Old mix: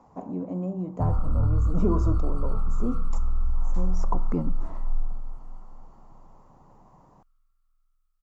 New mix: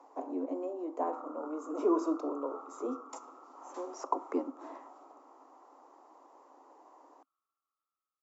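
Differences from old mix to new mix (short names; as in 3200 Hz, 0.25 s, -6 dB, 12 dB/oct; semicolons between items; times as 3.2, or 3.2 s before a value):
background: add LPF 1300 Hz 24 dB/oct; master: add steep high-pass 270 Hz 96 dB/oct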